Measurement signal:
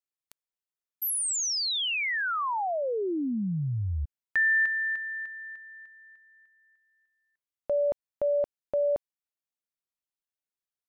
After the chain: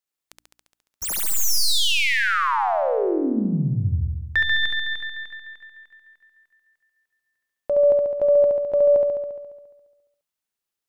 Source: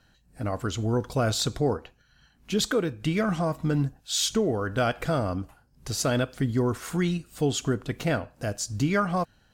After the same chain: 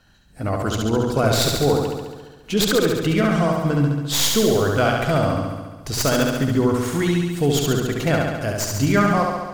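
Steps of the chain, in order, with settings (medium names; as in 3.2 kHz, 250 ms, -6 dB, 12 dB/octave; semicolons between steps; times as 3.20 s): tracing distortion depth 0.052 ms; hum notches 60/120/180/240/300 Hz; flutter echo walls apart 11.9 m, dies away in 1.3 s; trim +5 dB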